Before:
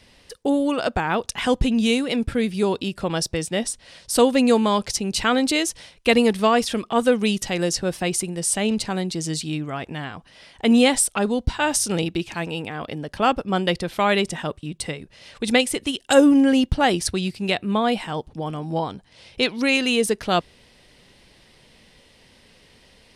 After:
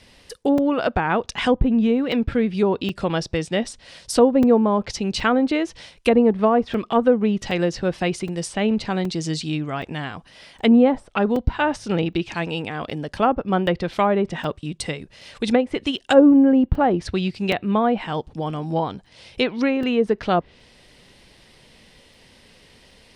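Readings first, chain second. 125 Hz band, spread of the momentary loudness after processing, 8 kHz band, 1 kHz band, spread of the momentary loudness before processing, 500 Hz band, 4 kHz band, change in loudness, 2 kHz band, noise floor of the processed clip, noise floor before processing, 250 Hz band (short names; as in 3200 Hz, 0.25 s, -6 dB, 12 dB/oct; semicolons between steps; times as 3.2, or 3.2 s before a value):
+2.0 dB, 12 LU, -11.5 dB, +0.5 dB, 13 LU, +2.0 dB, -5.0 dB, +0.5 dB, -2.5 dB, -53 dBFS, -55 dBFS, +2.0 dB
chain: treble ducked by the level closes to 920 Hz, closed at -14.5 dBFS; crackling interface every 0.77 s, samples 128, zero, from 0.58; gain +2 dB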